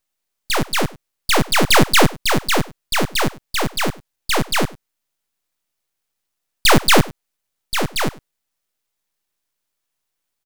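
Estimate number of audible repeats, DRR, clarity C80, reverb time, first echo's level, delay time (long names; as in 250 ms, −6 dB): 1, no reverb audible, no reverb audible, no reverb audible, −21.5 dB, 100 ms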